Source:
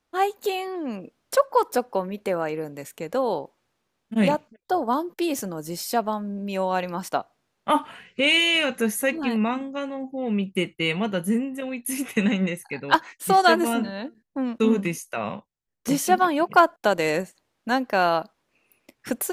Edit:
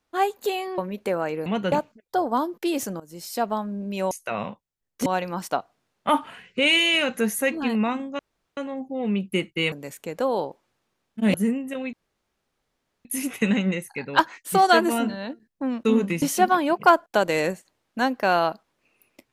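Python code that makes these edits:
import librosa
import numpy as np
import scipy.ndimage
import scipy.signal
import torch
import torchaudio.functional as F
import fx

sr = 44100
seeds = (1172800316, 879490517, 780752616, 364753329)

y = fx.edit(x, sr, fx.cut(start_s=0.78, length_s=1.2),
    fx.swap(start_s=2.66, length_s=1.62, other_s=10.95, other_length_s=0.26),
    fx.fade_in_from(start_s=5.56, length_s=0.53, floor_db=-18.0),
    fx.insert_room_tone(at_s=9.8, length_s=0.38),
    fx.insert_room_tone(at_s=11.8, length_s=1.12),
    fx.move(start_s=14.97, length_s=0.95, to_s=6.67), tone=tone)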